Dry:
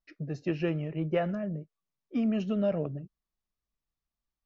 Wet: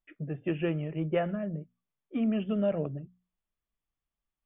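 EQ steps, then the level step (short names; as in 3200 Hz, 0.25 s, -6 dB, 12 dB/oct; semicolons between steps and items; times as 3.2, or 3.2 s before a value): brick-wall FIR low-pass 3600 Hz; notches 60/120/180/240 Hz; 0.0 dB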